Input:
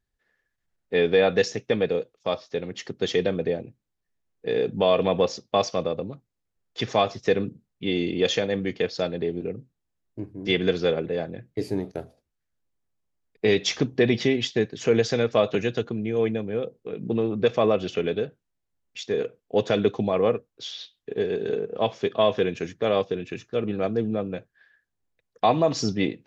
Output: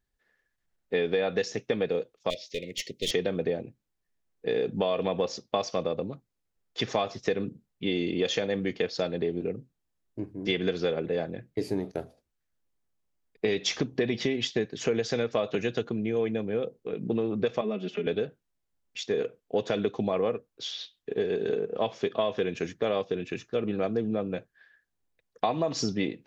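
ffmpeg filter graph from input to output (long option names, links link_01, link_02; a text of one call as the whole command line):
ffmpeg -i in.wav -filter_complex "[0:a]asettb=1/sr,asplit=3[link_01][link_02][link_03];[link_01]atrim=end=2.304[link_04];[link_02]atrim=start=2.3:end=3.11,asetpts=PTS-STARTPTS,afade=type=in:duration=0.004:curve=qsin,afade=type=out:start_time=0.806:duration=0.004:curve=qsin,tiltshelf=frequency=1100:gain=-6.5,aeval=exprs='clip(val(0),-1,0.0282)':channel_layout=same,asuperstop=centerf=1100:order=20:qfactor=0.85[link_05];[link_03]atrim=start=3.106[link_06];[link_04][link_05]acrossfade=duration=0.004:curve1=hsin:curve2=qsin[link_07];[link_07][link_06]acrossfade=duration=0.004:curve1=qsin:curve2=hsin,asettb=1/sr,asplit=3[link_08][link_09][link_10];[link_08]atrim=end=17.614[link_11];[link_09]atrim=start=17.61:end=18.07,asetpts=PTS-STARTPTS,afade=type=in:duration=0.004:curve=qsin,afade=type=out:start_time=0.456:duration=0.004:curve=qsin,acrossover=split=180 2600:gain=0.0794 1 0.178[link_12][link_13][link_14];[link_12][link_13][link_14]amix=inputs=3:normalize=0,acrossover=split=270|3000[link_15][link_16][link_17];[link_16]acompressor=threshold=-47dB:ratio=2:attack=3.2:release=140:knee=2.83:detection=peak[link_18];[link_15][link_18][link_17]amix=inputs=3:normalize=0,aecho=1:1:4.9:0.93,atrim=end_sample=20286[link_19];[link_10]atrim=start=18.066[link_20];[link_11][link_19]acrossfade=duration=0.004:curve1=hsin:curve2=qsin[link_21];[link_21][link_20]acrossfade=duration=0.004:curve1=qsin:curve2=hsin,acompressor=threshold=-23dB:ratio=6,equalizer=frequency=100:width=1.4:gain=-3.5" out.wav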